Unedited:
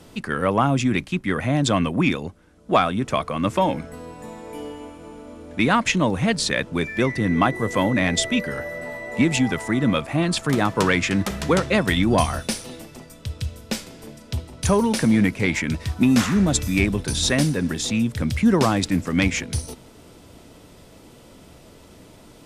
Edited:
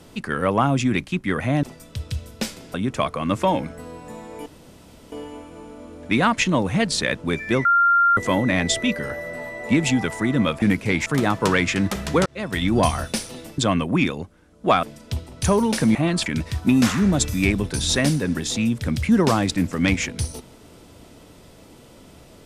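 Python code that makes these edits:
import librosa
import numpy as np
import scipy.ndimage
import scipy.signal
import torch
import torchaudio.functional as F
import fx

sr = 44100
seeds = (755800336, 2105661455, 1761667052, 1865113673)

y = fx.edit(x, sr, fx.swap(start_s=1.63, length_s=1.25, other_s=12.93, other_length_s=1.11),
    fx.insert_room_tone(at_s=4.6, length_s=0.66),
    fx.bleep(start_s=7.13, length_s=0.52, hz=1390.0, db=-13.0),
    fx.swap(start_s=10.1, length_s=0.31, other_s=15.16, other_length_s=0.44),
    fx.fade_in_span(start_s=11.61, length_s=0.49), tone=tone)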